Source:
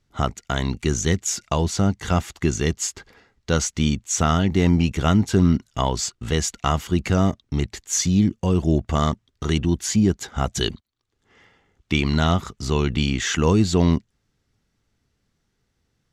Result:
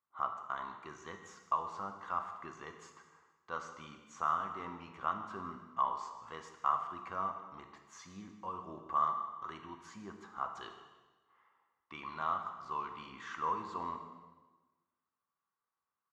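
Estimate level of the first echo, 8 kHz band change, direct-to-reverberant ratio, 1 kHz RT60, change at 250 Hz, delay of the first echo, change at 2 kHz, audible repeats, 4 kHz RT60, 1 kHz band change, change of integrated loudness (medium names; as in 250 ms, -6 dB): -17.0 dB, -34.0 dB, 4.0 dB, 1.2 s, -30.5 dB, 152 ms, -18.0 dB, 1, 1.2 s, -6.5 dB, -17.5 dB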